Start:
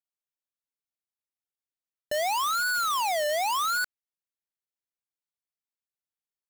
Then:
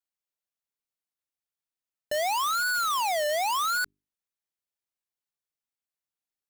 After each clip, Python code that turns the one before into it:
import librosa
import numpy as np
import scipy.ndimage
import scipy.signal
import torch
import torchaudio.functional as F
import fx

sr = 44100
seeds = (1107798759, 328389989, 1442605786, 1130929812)

y = fx.hum_notches(x, sr, base_hz=50, count=8)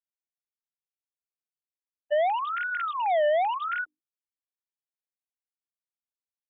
y = fx.sine_speech(x, sr)
y = fx.tilt_eq(y, sr, slope=-2.5)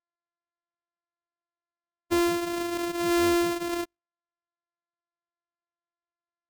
y = np.r_[np.sort(x[:len(x) // 128 * 128].reshape(-1, 128), axis=1).ravel(), x[len(x) // 128 * 128:]]